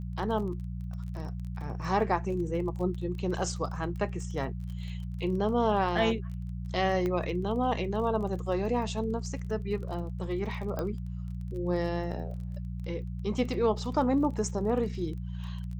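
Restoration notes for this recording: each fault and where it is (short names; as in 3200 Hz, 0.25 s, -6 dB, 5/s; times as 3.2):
crackle 25/s -39 dBFS
hum 60 Hz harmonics 3 -36 dBFS
7.06 pop -20 dBFS
10.79 pop -20 dBFS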